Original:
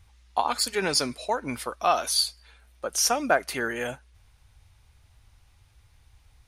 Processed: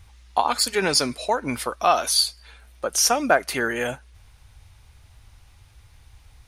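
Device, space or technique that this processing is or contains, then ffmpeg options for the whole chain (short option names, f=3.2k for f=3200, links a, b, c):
parallel compression: -filter_complex "[0:a]asplit=2[a][b];[b]acompressor=threshold=-35dB:ratio=6,volume=-4.5dB[c];[a][c]amix=inputs=2:normalize=0,volume=3dB"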